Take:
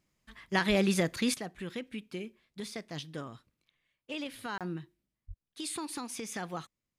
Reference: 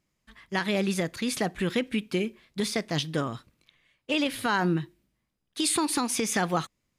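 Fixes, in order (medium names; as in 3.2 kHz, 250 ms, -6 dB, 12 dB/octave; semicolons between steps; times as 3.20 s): de-plosive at 0.68/5.27 s; interpolate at 4.58 s, 27 ms; trim 0 dB, from 1.34 s +12 dB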